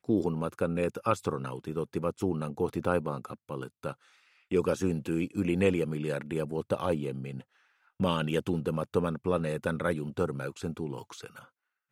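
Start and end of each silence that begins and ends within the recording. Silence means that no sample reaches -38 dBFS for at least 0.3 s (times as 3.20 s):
3.92–4.51 s
7.41–8.00 s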